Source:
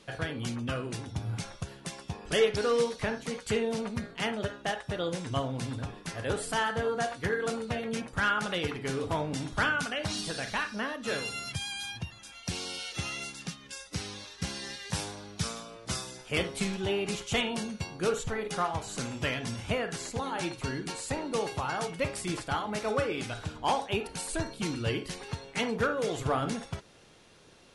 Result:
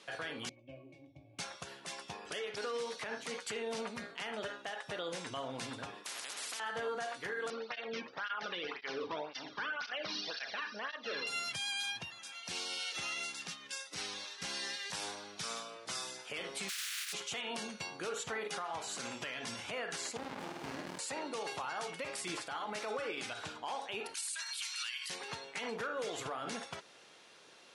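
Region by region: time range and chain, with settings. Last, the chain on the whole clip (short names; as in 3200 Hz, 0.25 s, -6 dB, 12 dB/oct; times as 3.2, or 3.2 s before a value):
0.49–1.39 Butterworth band-stop 1300 Hz, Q 1.1 + bell 190 Hz -9.5 dB 0.56 oct + octave resonator C#, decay 0.1 s
6.04–6.6 HPF 300 Hz 24 dB/oct + compressor 2:1, threshold -37 dBFS + spectral compressor 10:1
7.5–11.27 steep low-pass 5700 Hz 72 dB/oct + tape flanging out of phase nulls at 1.9 Hz, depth 1.6 ms
16.68–17.12 spectral contrast lowered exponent 0.12 + steep high-pass 1400 Hz
20.17–20.99 flutter echo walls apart 8.7 m, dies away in 0.9 s + running maximum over 65 samples
24.14–25.1 Bessel high-pass 1900 Hz, order 6 + high shelf 4400 Hz +7 dB + backwards sustainer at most 60 dB/s
whole clip: weighting filter A; compressor, threshold -31 dBFS; limiter -30 dBFS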